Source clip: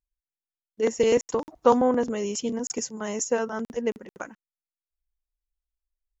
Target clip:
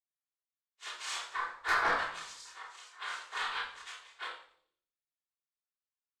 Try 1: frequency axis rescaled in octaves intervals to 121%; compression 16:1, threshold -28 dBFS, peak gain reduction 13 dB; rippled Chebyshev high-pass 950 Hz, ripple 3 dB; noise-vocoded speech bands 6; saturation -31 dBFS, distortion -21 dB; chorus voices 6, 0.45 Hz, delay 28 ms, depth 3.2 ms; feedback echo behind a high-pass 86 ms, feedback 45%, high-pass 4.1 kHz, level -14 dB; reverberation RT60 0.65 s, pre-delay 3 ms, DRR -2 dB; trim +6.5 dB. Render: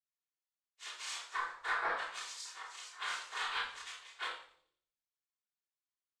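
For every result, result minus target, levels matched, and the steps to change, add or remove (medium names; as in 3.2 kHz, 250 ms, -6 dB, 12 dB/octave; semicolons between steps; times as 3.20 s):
compression: peak gain reduction +13 dB; 8 kHz band +4.0 dB
remove: compression 16:1, threshold -28 dBFS, peak gain reduction 13 dB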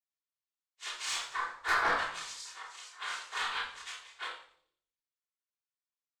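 8 kHz band +4.0 dB
add after rippled Chebyshev high-pass: treble shelf 3.5 kHz -8 dB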